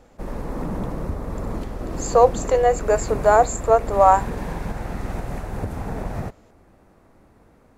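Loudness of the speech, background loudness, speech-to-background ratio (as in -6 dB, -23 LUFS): -18.0 LUFS, -30.5 LUFS, 12.5 dB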